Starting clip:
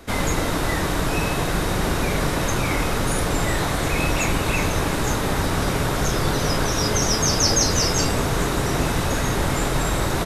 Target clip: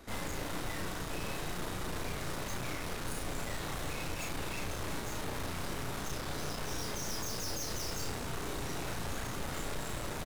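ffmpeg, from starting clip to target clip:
-filter_complex "[0:a]aeval=exprs='(tanh(39.8*val(0)+0.7)-tanh(0.7))/39.8':c=same,asplit=2[s0][s1];[s1]adelay=34,volume=0.708[s2];[s0][s2]amix=inputs=2:normalize=0,volume=0.447"

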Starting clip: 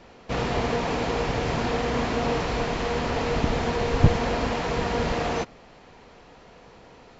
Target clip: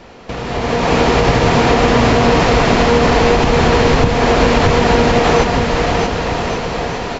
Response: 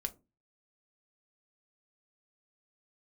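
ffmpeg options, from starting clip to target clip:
-filter_complex "[0:a]acompressor=threshold=0.0158:ratio=6,asplit=2[s0][s1];[s1]aecho=0:1:630|1134|1537|1860|2118:0.631|0.398|0.251|0.158|0.1[s2];[s0][s2]amix=inputs=2:normalize=0,dynaudnorm=f=100:g=13:m=5.31,alimiter=level_in=3.76:limit=0.891:release=50:level=0:latency=1,volume=0.891"

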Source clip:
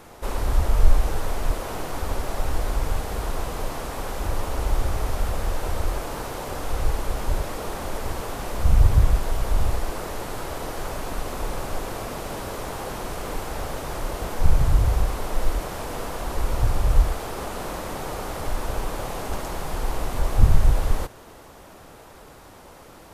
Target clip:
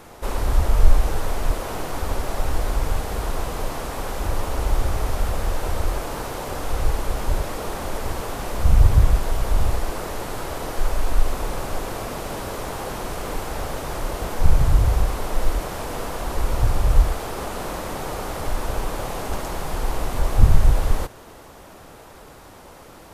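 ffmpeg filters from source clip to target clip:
-filter_complex "[0:a]asplit=3[s0][s1][s2];[s0]afade=t=out:st=10.78:d=0.02[s3];[s1]asubboost=boost=5.5:cutoff=59,afade=t=in:st=10.78:d=0.02,afade=t=out:st=11.33:d=0.02[s4];[s2]afade=t=in:st=11.33:d=0.02[s5];[s3][s4][s5]amix=inputs=3:normalize=0,volume=1.26"

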